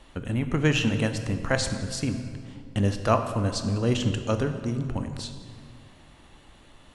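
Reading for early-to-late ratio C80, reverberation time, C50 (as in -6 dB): 9.5 dB, 2.1 s, 8.5 dB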